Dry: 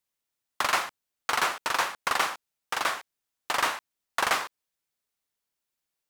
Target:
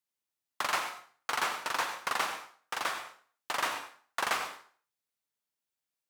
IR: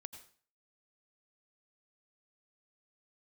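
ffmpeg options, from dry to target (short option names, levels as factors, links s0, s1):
-filter_complex "[0:a]highpass=88[s0];[1:a]atrim=start_sample=2205[s1];[s0][s1]afir=irnorm=-1:irlink=0"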